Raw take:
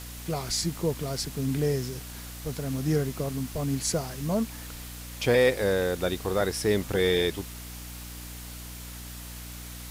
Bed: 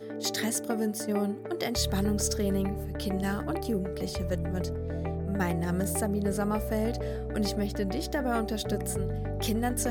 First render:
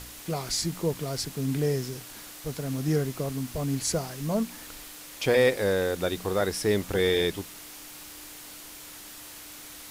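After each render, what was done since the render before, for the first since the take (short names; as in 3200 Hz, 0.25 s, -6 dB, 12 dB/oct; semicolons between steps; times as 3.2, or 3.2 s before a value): de-hum 60 Hz, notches 4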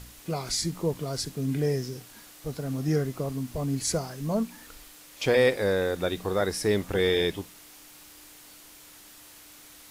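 noise print and reduce 6 dB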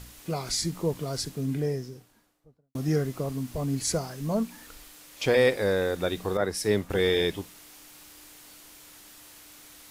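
1.17–2.75 studio fade out; 6.37–6.9 three-band expander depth 100%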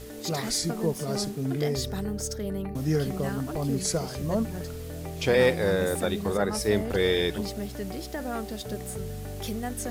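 add bed -4 dB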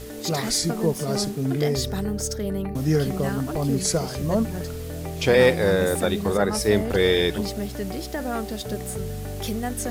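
gain +4.5 dB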